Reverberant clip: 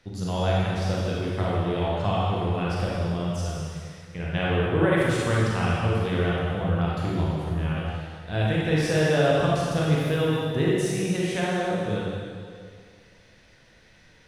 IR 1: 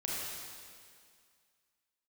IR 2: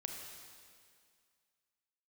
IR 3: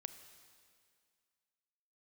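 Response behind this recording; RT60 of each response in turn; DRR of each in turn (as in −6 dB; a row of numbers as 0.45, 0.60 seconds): 1; 2.1, 2.1, 2.1 seconds; −6.0, 1.5, 9.5 decibels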